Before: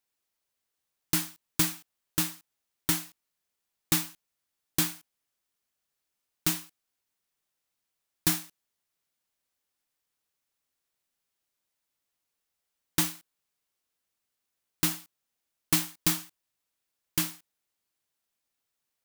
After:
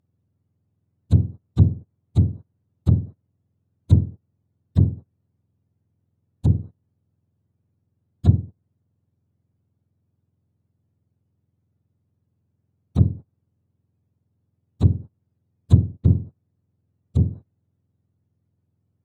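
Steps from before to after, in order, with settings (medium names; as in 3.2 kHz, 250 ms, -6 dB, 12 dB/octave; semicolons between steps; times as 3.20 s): spectrum inverted on a logarithmic axis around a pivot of 1.1 kHz; low-pass that closes with the level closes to 320 Hz, closed at -18 dBFS; trim +2.5 dB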